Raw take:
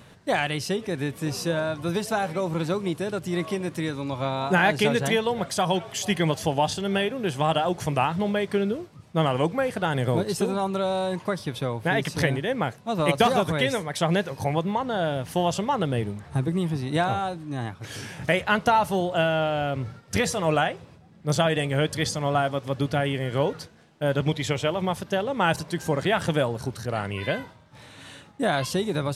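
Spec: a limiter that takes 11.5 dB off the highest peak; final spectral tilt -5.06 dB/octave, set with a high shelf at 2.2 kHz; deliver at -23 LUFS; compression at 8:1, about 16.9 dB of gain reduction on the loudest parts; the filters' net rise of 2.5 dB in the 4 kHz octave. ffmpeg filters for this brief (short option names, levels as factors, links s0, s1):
-af "highshelf=f=2200:g=-4.5,equalizer=f=4000:t=o:g=7.5,acompressor=threshold=0.0224:ratio=8,volume=6.68,alimiter=limit=0.237:level=0:latency=1"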